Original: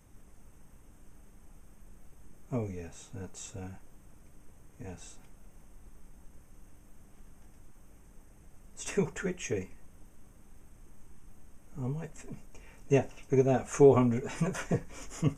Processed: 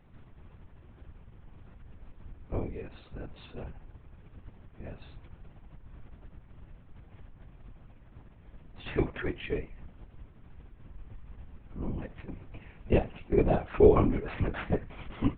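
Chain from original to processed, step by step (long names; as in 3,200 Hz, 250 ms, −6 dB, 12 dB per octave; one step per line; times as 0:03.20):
linear-prediction vocoder at 8 kHz whisper
level +1 dB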